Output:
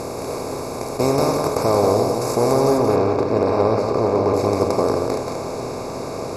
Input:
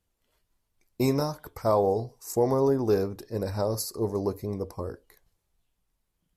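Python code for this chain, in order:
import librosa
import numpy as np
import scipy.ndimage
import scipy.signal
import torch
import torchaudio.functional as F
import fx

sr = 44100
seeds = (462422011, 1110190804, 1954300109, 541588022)

y = fx.bin_compress(x, sr, power=0.2)
y = fx.lowpass(y, sr, hz=fx.steps((0.0, 9800.0), (2.78, 3100.0), (4.34, 6900.0)), slope=12)
y = y + 10.0 ** (-5.0 / 20.0) * np.pad(y, (int(180 * sr / 1000.0), 0))[:len(y)]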